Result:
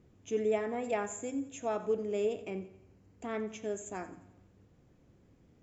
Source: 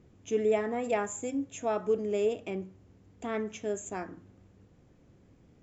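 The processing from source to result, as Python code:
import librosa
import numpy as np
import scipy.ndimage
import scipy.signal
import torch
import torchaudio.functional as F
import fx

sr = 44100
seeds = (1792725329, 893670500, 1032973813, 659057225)

y = fx.notch(x, sr, hz=3500.0, q=8.3, at=(2.4, 3.29))
y = fx.echo_feedback(y, sr, ms=88, feedback_pct=50, wet_db=-15.5)
y = y * librosa.db_to_amplitude(-3.5)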